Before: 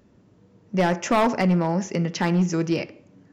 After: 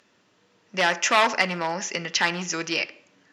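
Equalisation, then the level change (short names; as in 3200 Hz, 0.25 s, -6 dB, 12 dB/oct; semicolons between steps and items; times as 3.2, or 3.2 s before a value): band-pass 2400 Hz, Q 0.78; high shelf 3200 Hz +9 dB; notch 2200 Hz, Q 24; +6.5 dB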